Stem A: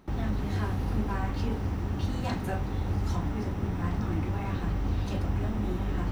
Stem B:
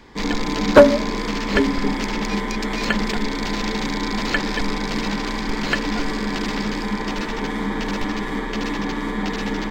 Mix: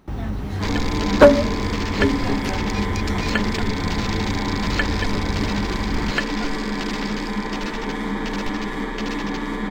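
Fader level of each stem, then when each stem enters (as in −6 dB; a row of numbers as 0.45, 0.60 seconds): +3.0, −1.0 decibels; 0.00, 0.45 seconds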